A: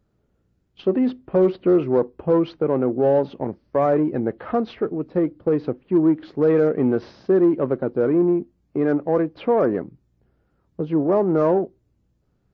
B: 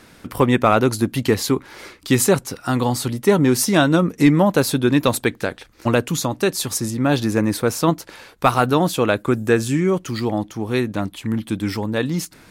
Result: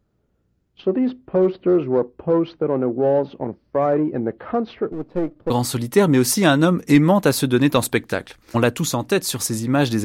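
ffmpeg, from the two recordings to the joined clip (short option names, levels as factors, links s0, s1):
-filter_complex "[0:a]asettb=1/sr,asplit=3[s0][s1][s2];[s0]atrim=end=4.924[s3];[s1]atrim=start=4.92:end=5.5,asetpts=PTS-STARTPTS,afade=t=in:d=0.004:c=qsin,afade=t=out:st=0.576:d=0.004:c=qsin,aeval=exprs='if(lt(val(0),0),0.447*val(0),val(0))':c=same[s4];[s2]atrim=start=5.496[s5];[s3][s4]acrossfade=d=0.004:c1=hsin:c2=qsin[s6];[s6][s5]acrossfade=d=0.004:c1=qsin:c2=hsin,apad=whole_dur=10.04,atrim=end=10.04,atrim=end=5.502[s7];[1:a]atrim=start=2.808:end=7.35[s8];[s7][s8]acrossfade=d=0.004:c1=hsin:c2=hsin"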